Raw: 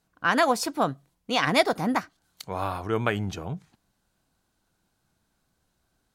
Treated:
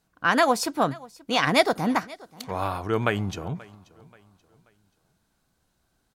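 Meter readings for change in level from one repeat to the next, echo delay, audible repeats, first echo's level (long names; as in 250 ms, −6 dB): −8.5 dB, 532 ms, 2, −22.0 dB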